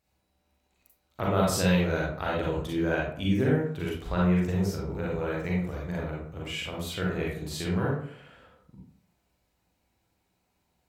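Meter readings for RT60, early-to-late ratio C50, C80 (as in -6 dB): 0.55 s, -0.5 dB, 5.5 dB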